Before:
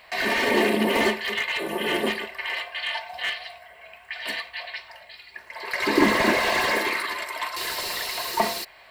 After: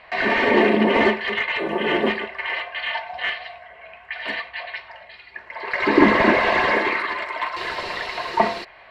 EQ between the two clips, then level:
low-pass filter 2,500 Hz 12 dB per octave
+5.0 dB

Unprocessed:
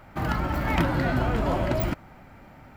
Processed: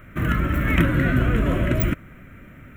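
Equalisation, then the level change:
phaser with its sweep stopped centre 2,000 Hz, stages 4
+6.5 dB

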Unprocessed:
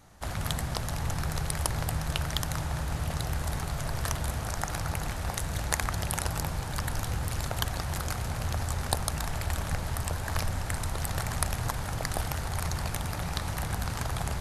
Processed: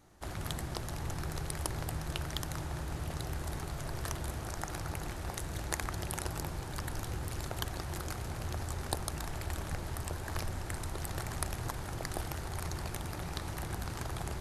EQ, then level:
parametric band 350 Hz +10 dB 0.49 octaves
−7.0 dB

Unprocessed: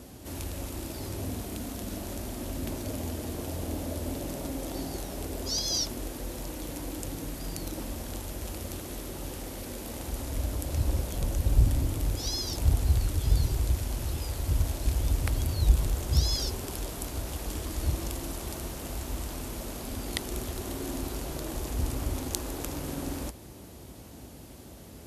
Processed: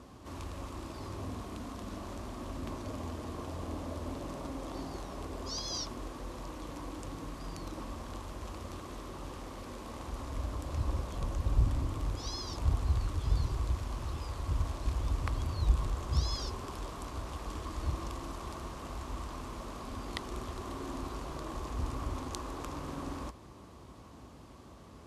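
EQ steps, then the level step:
high-frequency loss of the air 71 metres
parametric band 1,100 Hz +14 dB 0.41 octaves
−5.5 dB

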